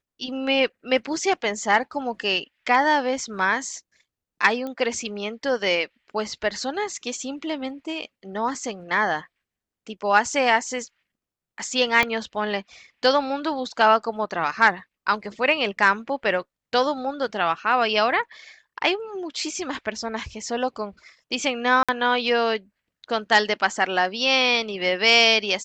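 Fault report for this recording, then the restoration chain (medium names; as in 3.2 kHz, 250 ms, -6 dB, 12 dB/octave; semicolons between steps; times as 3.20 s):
4.67 s: pop -20 dBFS
12.03 s: pop -7 dBFS
21.83–21.89 s: dropout 56 ms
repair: de-click; interpolate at 21.83 s, 56 ms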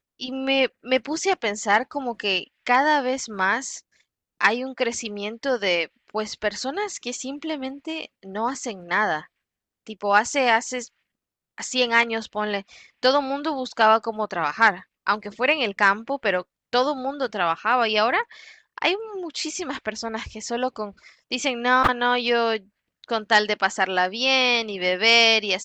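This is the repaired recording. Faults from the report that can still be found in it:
12.03 s: pop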